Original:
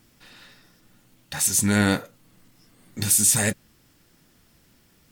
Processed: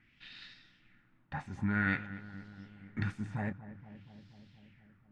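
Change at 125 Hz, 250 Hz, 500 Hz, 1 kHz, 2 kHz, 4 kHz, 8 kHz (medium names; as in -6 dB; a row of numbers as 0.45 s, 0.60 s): -9.0 dB, -11.0 dB, -17.5 dB, -8.5 dB, -7.0 dB, -21.5 dB, under -40 dB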